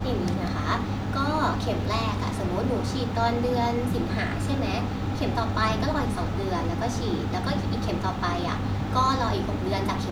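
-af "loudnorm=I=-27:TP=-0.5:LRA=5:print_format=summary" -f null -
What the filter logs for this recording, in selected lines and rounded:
Input Integrated:    -26.6 LUFS
Input True Peak:      -9.0 dBTP
Input LRA:             0.9 LU
Input Threshold:     -36.6 LUFS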